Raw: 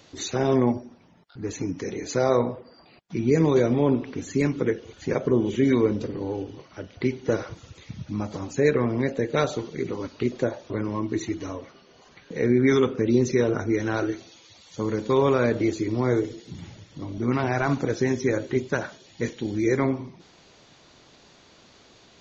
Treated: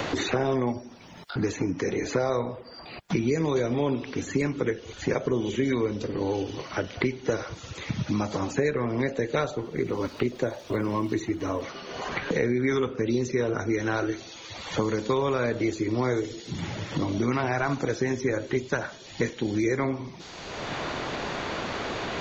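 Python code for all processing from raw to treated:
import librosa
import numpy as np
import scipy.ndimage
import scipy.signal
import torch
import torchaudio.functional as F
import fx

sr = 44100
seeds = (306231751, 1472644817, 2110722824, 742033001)

y = fx.dmg_crackle(x, sr, seeds[0], per_s=450.0, level_db=-49.0, at=(9.5, 11.6), fade=0.02)
y = fx.high_shelf(y, sr, hz=2500.0, db=-10.0, at=(9.5, 11.6), fade=0.02)
y = fx.peak_eq(y, sr, hz=210.0, db=-5.0, octaves=2.5)
y = fx.band_squash(y, sr, depth_pct=100)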